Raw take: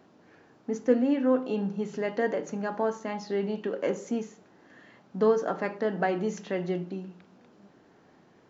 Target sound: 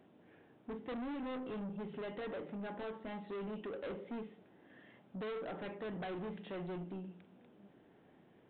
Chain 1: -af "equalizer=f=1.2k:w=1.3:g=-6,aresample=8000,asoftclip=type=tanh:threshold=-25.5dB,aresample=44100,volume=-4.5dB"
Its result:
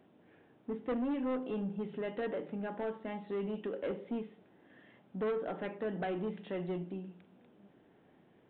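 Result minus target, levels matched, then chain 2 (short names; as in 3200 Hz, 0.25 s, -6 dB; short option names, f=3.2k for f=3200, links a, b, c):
soft clip: distortion -6 dB
-af "equalizer=f=1.2k:w=1.3:g=-6,aresample=8000,asoftclip=type=tanh:threshold=-35dB,aresample=44100,volume=-4.5dB"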